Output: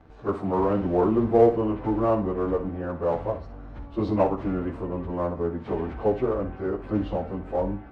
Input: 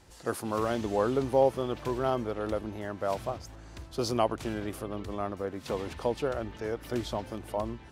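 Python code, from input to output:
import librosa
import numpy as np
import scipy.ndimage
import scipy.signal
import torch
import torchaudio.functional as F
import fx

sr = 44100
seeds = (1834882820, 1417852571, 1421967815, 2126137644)

p1 = fx.pitch_bins(x, sr, semitones=-2.5)
p2 = scipy.signal.sosfilt(scipy.signal.butter(2, 1400.0, 'lowpass', fs=sr, output='sos'), p1)
p3 = fx.clip_asym(p2, sr, top_db=-37.0, bottom_db=-18.5)
p4 = p2 + F.gain(torch.from_numpy(p3), -8.0).numpy()
p5 = fx.room_flutter(p4, sr, wall_m=10.2, rt60_s=0.31)
y = F.gain(torch.from_numpy(p5), 5.5).numpy()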